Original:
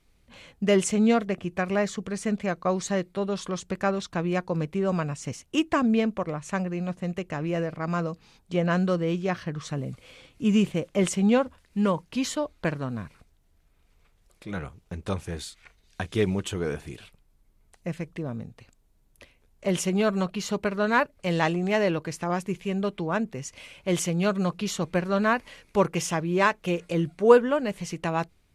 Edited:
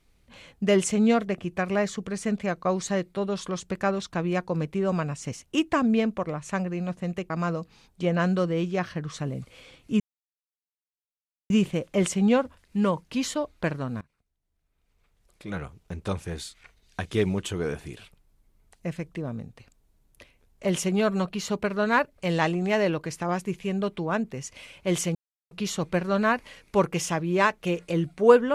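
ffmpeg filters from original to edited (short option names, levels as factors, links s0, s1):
-filter_complex "[0:a]asplit=6[s0][s1][s2][s3][s4][s5];[s0]atrim=end=7.302[s6];[s1]atrim=start=7.808:end=10.51,asetpts=PTS-STARTPTS,afade=t=out:st=2.698:d=0.004:c=hsin,apad=pad_dur=1.5[s7];[s2]atrim=start=10.51:end=13.02,asetpts=PTS-STARTPTS,afade=t=in:d=0.004:c=hsin,afade=t=out:st=2.506:d=0.004:c=hsin:silence=0.0891251[s8];[s3]atrim=start=13.02:end=24.16,asetpts=PTS-STARTPTS,afade=t=in:d=1.46:c=qua:silence=0.0891251,afade=t=out:st=11.136:d=0.004:c=hsin[s9];[s4]atrim=start=24.16:end=24.52,asetpts=PTS-STARTPTS,volume=0[s10];[s5]atrim=start=24.52,asetpts=PTS-STARTPTS,afade=t=in:d=0.004:c=hsin[s11];[s7][s8][s9][s10][s11]concat=n=5:v=0:a=1[s12];[s6][s12]acrossfade=d=0.004:c1=hsin:c2=hsin"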